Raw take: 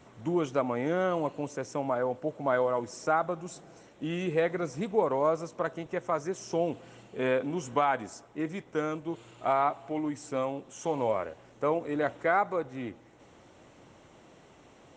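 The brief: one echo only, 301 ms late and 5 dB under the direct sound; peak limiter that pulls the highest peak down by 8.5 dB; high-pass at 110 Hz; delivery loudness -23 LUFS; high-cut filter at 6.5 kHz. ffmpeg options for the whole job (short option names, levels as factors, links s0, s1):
-af "highpass=110,lowpass=6500,alimiter=limit=0.075:level=0:latency=1,aecho=1:1:301:0.562,volume=3.35"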